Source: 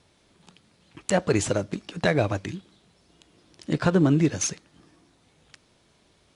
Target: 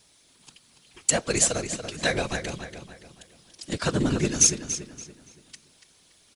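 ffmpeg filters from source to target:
-filter_complex "[0:a]crystalizer=i=6:c=0,afftfilt=real='hypot(re,im)*cos(2*PI*random(0))':imag='hypot(re,im)*sin(2*PI*random(1))':win_size=512:overlap=0.75,asplit=2[s0][s1];[s1]adelay=285,lowpass=f=4600:p=1,volume=0.398,asplit=2[s2][s3];[s3]adelay=285,lowpass=f=4600:p=1,volume=0.4,asplit=2[s4][s5];[s5]adelay=285,lowpass=f=4600:p=1,volume=0.4,asplit=2[s6][s7];[s7]adelay=285,lowpass=f=4600:p=1,volume=0.4,asplit=2[s8][s9];[s9]adelay=285,lowpass=f=4600:p=1,volume=0.4[s10];[s0][s2][s4][s6][s8][s10]amix=inputs=6:normalize=0"

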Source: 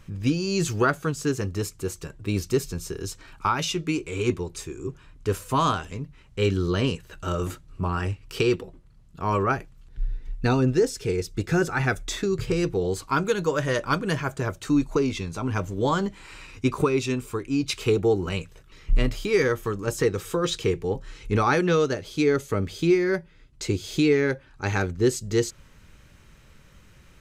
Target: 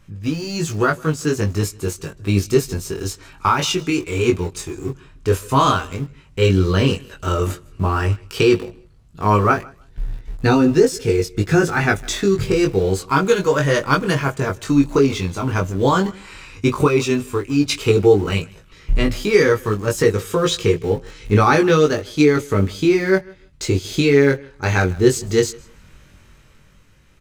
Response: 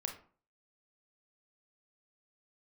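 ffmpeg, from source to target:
-filter_complex "[0:a]dynaudnorm=f=150:g=13:m=2.24,aecho=1:1:156|312:0.075|0.0135,asplit=2[s0][s1];[s1]aeval=exprs='val(0)*gte(abs(val(0)),0.0562)':c=same,volume=0.299[s2];[s0][s2]amix=inputs=2:normalize=0,flanger=delay=19:depth=2.8:speed=0.1,volume=1.19"

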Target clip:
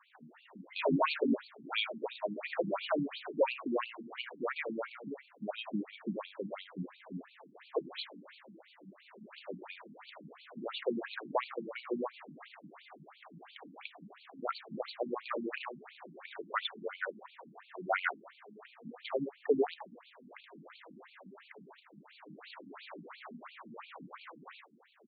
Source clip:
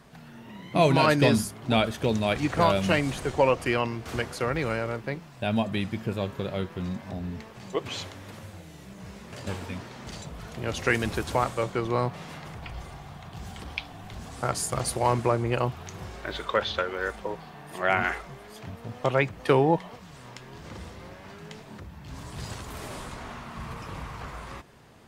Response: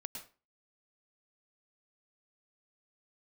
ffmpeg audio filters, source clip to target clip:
-filter_complex "[0:a]aecho=1:1:33|75:0.188|0.282,asplit=2[s0][s1];[s1]aeval=exprs='(mod(4.47*val(0)+1,2)-1)/4.47':c=same,volume=0.282[s2];[s0][s2]amix=inputs=2:normalize=0,highpass=f=120:w=0.5412,highpass=f=120:w=1.3066,afftfilt=real='re*between(b*sr/1024,220*pow(3300/220,0.5+0.5*sin(2*PI*2.9*pts/sr))/1.41,220*pow(3300/220,0.5+0.5*sin(2*PI*2.9*pts/sr))*1.41)':imag='im*between(b*sr/1024,220*pow(3300/220,0.5+0.5*sin(2*PI*2.9*pts/sr))/1.41,220*pow(3300/220,0.5+0.5*sin(2*PI*2.9*pts/sr))*1.41)':win_size=1024:overlap=0.75,volume=0.596"

